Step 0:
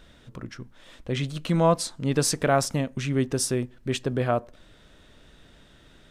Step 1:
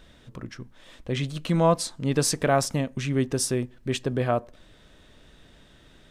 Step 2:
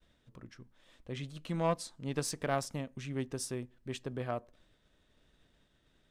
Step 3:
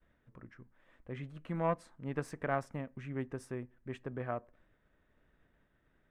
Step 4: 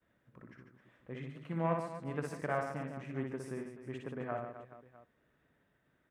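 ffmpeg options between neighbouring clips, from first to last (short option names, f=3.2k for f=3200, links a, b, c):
-af "bandreject=f=1.4k:w=20"
-af "agate=range=-33dB:threshold=-49dB:ratio=3:detection=peak,aeval=exprs='0.376*(cos(1*acos(clip(val(0)/0.376,-1,1)))-cos(1*PI/2))+0.0531*(cos(3*acos(clip(val(0)/0.376,-1,1)))-cos(3*PI/2))':c=same,volume=-8.5dB"
-af "highshelf=f=2.8k:t=q:w=1.5:g=-14,volume=-2dB"
-filter_complex "[0:a]highpass=93,asplit=2[a][b];[b]aecho=0:1:60|144|261.6|426.2|656.7:0.631|0.398|0.251|0.158|0.1[c];[a][c]amix=inputs=2:normalize=0,volume=-2dB"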